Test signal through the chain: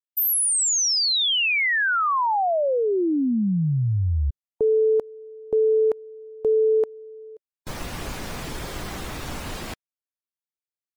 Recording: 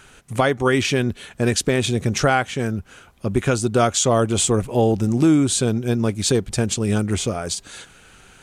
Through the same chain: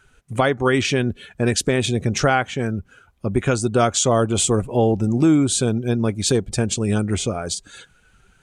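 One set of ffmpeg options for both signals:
-af "afftdn=nr=13:nf=-40"

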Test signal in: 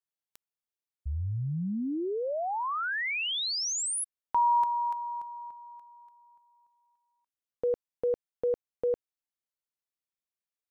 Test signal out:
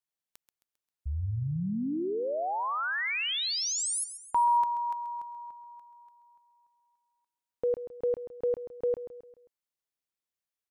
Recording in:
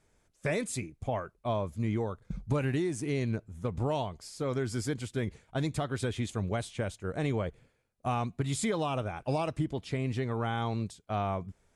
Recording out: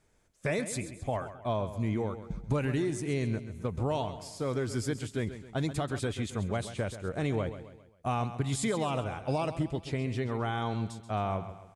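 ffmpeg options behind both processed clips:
-af "aecho=1:1:133|266|399|532:0.251|0.111|0.0486|0.0214"

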